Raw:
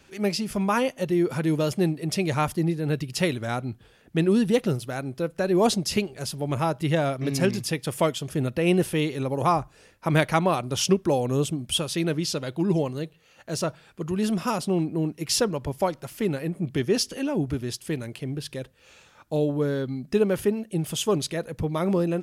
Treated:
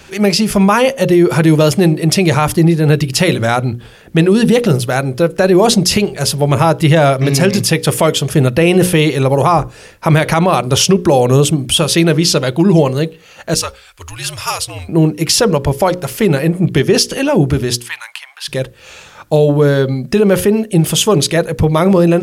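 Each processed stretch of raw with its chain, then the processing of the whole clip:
13.54–14.89 passive tone stack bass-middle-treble 10-0-10 + frequency shift -72 Hz
17.82–18.48 elliptic high-pass 910 Hz, stop band 60 dB + high shelf 4500 Hz -5.5 dB
whole clip: bell 270 Hz -6.5 dB 0.32 oct; notches 60/120/180/240/300/360/420/480/540 Hz; maximiser +18 dB; gain -1 dB

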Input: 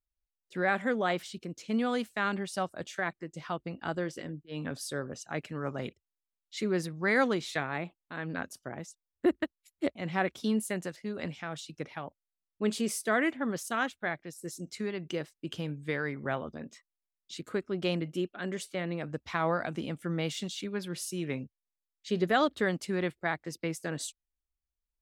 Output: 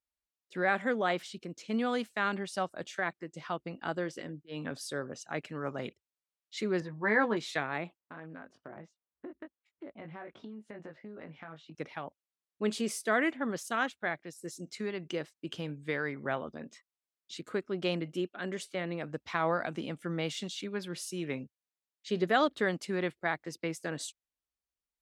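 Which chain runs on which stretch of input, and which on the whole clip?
6.8–7.37 tape spacing loss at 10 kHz 31 dB + doubler 14 ms -6 dB + small resonant body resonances 960/1700 Hz, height 11 dB, ringing for 25 ms
7.99–11.75 LPF 1800 Hz + doubler 19 ms -3.5 dB + compressor 10:1, threshold -40 dBFS
whole clip: HPF 190 Hz 6 dB/oct; high shelf 11000 Hz -10 dB

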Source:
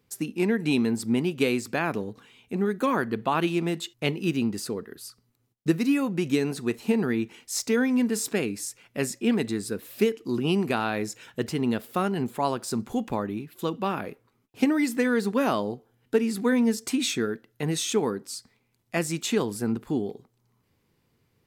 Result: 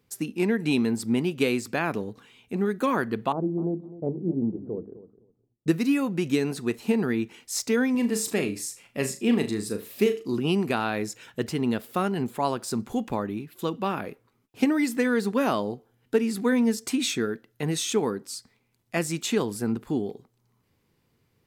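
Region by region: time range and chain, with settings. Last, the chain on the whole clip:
3.32–5.68 inverse Chebyshev low-pass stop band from 2400 Hz, stop band 60 dB + notches 50/100/150/200/250/300/350 Hz + feedback echo 0.256 s, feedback 17%, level -15.5 dB
7.91–10.34 notch 1500 Hz, Q 9.2 + flutter echo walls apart 6.5 m, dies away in 0.26 s
whole clip: dry

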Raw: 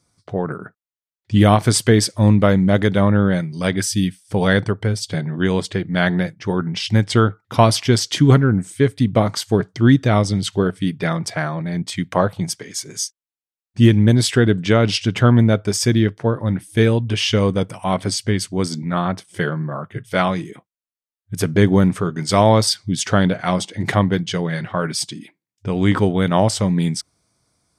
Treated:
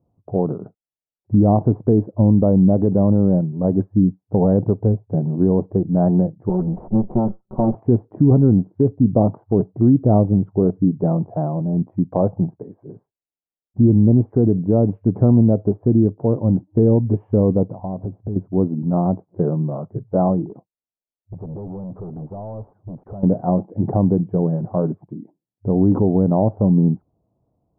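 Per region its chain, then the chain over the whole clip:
6.49–7.75 minimum comb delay 5.4 ms + compressor 3:1, threshold -17 dBFS
13.81–14.88 block floating point 7-bit + air absorption 450 m
17.79–18.36 low shelf 460 Hz +8.5 dB + compressor 10:1, threshold -24 dBFS + companded quantiser 6-bit
20.45–23.23 compressor, threshold -23 dBFS + hard clip -30 dBFS
whole clip: steep low-pass 840 Hz 36 dB/oct; dynamic EQ 260 Hz, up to +4 dB, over -28 dBFS, Q 1.1; limiter -7.5 dBFS; gain +1.5 dB

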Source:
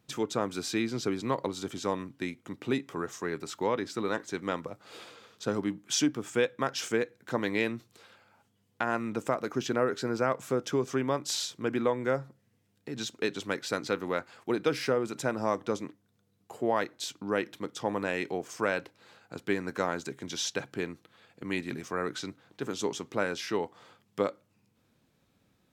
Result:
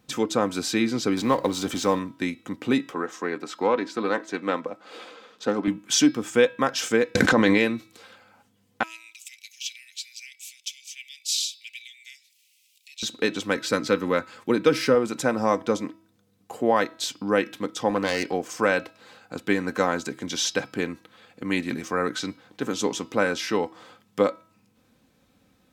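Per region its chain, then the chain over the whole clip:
1.17–1.99 G.711 law mismatch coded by mu + mismatched tape noise reduction encoder only
2.91–5.68 HPF 240 Hz + high shelf 5700 Hz -12 dB + Doppler distortion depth 0.14 ms
7.15–7.58 LPF 8000 Hz + fast leveller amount 100%
8.83–13.03 steep high-pass 2300 Hz 72 dB/oct + upward compressor, threshold -57 dBFS
13.56–14.95 HPF 93 Hz + low shelf 130 Hz +8 dB + notch 740 Hz, Q 5.3
17.9–18.33 self-modulated delay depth 0.19 ms + HPF 56 Hz
whole clip: comb 3.9 ms, depth 38%; de-hum 324.1 Hz, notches 16; gain +6.5 dB

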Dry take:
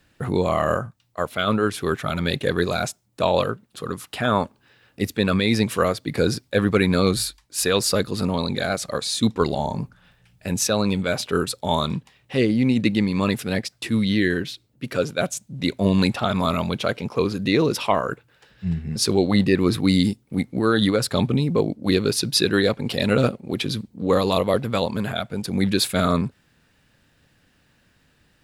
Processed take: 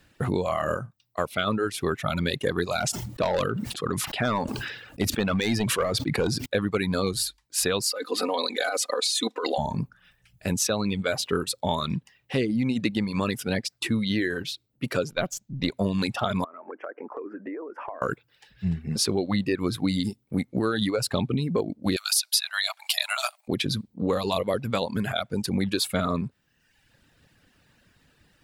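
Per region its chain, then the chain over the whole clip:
2.79–6.46 high shelf 9800 Hz -6.5 dB + overloaded stage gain 15.5 dB + sustainer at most 42 dB/s
7.91–9.58 inverse Chebyshev high-pass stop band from 160 Hz + comb 4 ms, depth 68% + negative-ratio compressor -25 dBFS
15.11–15.71 half-wave gain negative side -3 dB + bell 9300 Hz -15 dB 0.39 oct
16.44–18.02 elliptic band-pass 290–1700 Hz + compressor 12:1, threshold -32 dBFS
21.96–23.48 brick-wall FIR high-pass 600 Hz + tilt +4 dB/oct
whole clip: reverb removal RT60 0.85 s; compressor, threshold -23 dBFS; gain +1.5 dB

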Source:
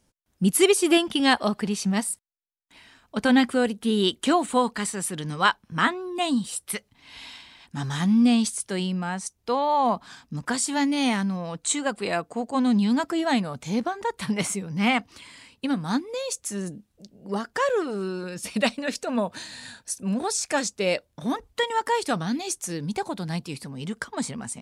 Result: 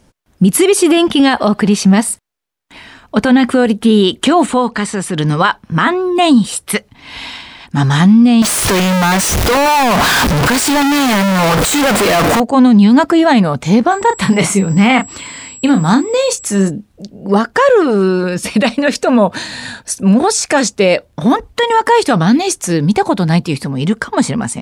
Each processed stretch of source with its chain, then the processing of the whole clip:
4.5–5.18 LPF 8600 Hz + compressor 2:1, threshold -33 dBFS
8.42–12.4 infinite clipping + low shelf 400 Hz -4.5 dB
13.9–16.69 doubler 31 ms -9 dB + whine 7700 Hz -42 dBFS
whole clip: high shelf 3800 Hz -8.5 dB; maximiser +19 dB; gain -1 dB

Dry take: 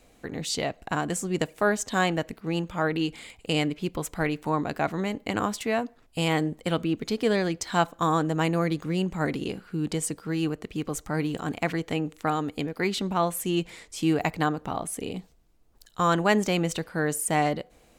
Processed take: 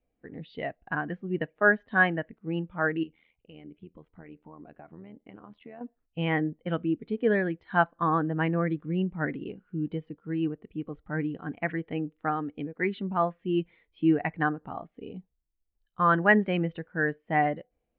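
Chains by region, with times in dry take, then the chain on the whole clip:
3.03–5.81 compressor 12:1, threshold -28 dBFS + AM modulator 81 Hz, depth 65%
whole clip: steep low-pass 3500 Hz 36 dB/oct; dynamic EQ 1700 Hz, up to +8 dB, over -45 dBFS, Q 2.3; spectral expander 1.5:1; gain -1 dB

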